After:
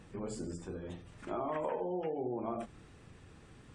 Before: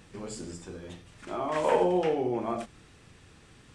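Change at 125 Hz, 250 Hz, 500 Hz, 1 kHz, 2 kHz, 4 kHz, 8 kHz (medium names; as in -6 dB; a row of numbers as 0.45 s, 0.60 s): -4.5 dB, -7.0 dB, -9.0 dB, -9.0 dB, -11.5 dB, under -10 dB, no reading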